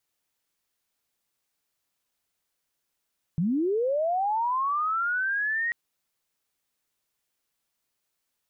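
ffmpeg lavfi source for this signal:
-f lavfi -i "aevalsrc='pow(10,(-22-2.5*t/2.34)/20)*sin(2*PI*(150*t+1750*t*t/(2*2.34)))':d=2.34:s=44100"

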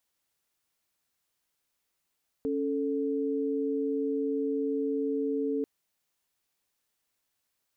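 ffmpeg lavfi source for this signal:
-f lavfi -i "aevalsrc='0.0335*(sin(2*PI*277.18*t)+sin(2*PI*440*t))':d=3.19:s=44100"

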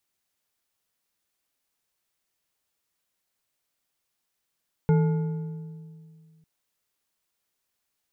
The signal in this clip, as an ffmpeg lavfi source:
-f lavfi -i "aevalsrc='0.158*pow(10,-3*t/2.29)*sin(2*PI*160*t)+0.0631*pow(10,-3*t/1.689)*sin(2*PI*441.1*t)+0.0251*pow(10,-3*t/1.38)*sin(2*PI*864.6*t)+0.01*pow(10,-3*t/1.187)*sin(2*PI*1429.3*t)+0.00398*pow(10,-3*t/1.053)*sin(2*PI*2134.4*t)':d=1.55:s=44100"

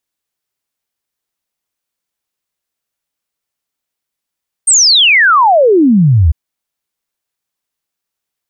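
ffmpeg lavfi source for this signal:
-f lavfi -i "aevalsrc='0.596*clip(min(t,1.65-t)/0.01,0,1)*sin(2*PI*8900*1.65/log(71/8900)*(exp(log(71/8900)*t/1.65)-1))':d=1.65:s=44100"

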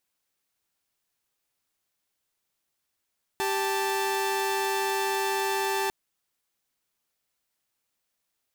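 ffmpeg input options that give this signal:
-f lavfi -i "aevalsrc='0.0531*((2*mod(392*t,1)-1)+(2*mod(880*t,1)-1))':d=2.5:s=44100"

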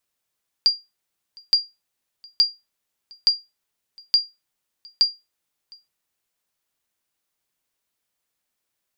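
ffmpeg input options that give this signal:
-f lavfi -i "aevalsrc='0.398*(sin(2*PI*4780*mod(t,0.87))*exp(-6.91*mod(t,0.87)/0.22)+0.0398*sin(2*PI*4780*max(mod(t,0.87)-0.71,0))*exp(-6.91*max(mod(t,0.87)-0.71,0)/0.22))':d=5.22:s=44100"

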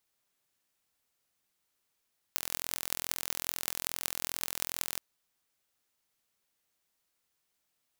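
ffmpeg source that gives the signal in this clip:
-f lavfi -i "aevalsrc='0.794*eq(mod(n,1040),0)*(0.5+0.5*eq(mod(n,8320),0))':d=2.62:s=44100"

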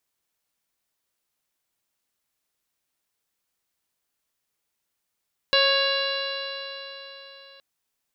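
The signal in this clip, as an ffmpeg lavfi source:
-f lavfi -i "aevalsrc='0.0841*pow(10,-3*t/3.89)*sin(2*PI*547.52*t)+0.0447*pow(10,-3*t/3.89)*sin(2*PI*1098.15*t)+0.0596*pow(10,-3*t/3.89)*sin(2*PI*1654.97*t)+0.0211*pow(10,-3*t/3.89)*sin(2*PI*2221.01*t)+0.0794*pow(10,-3*t/3.89)*sin(2*PI*2799.2*t)+0.0335*pow(10,-3*t/3.89)*sin(2*PI*3392.39*t)+0.0944*pow(10,-3*t/3.89)*sin(2*PI*4003.27*t)+0.0299*pow(10,-3*t/3.89)*sin(2*PI*4634.43*t)+0.015*pow(10,-3*t/3.89)*sin(2*PI*5288.27*t)':d=2.07:s=44100"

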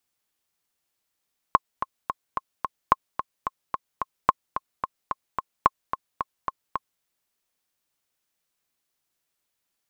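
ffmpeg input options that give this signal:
-f lavfi -i "aevalsrc='pow(10,(-2-10.5*gte(mod(t,5*60/219),60/219))/20)*sin(2*PI*1070*mod(t,60/219))*exp(-6.91*mod(t,60/219)/0.03)':d=5.47:s=44100"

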